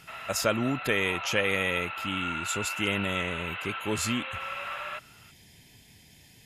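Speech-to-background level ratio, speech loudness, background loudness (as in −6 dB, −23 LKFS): 5.0 dB, −29.5 LKFS, −34.5 LKFS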